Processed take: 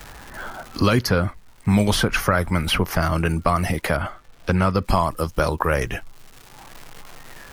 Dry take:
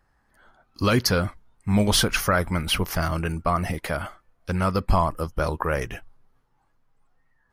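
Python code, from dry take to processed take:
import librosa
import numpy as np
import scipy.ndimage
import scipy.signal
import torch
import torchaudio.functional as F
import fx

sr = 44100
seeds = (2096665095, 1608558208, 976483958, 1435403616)

y = fx.dmg_crackle(x, sr, seeds[0], per_s=410.0, level_db=-50.0)
y = fx.high_shelf(y, sr, hz=4400.0, db=-12.0, at=(3.96, 4.82))
y = fx.band_squash(y, sr, depth_pct=70)
y = F.gain(torch.from_numpy(y), 3.5).numpy()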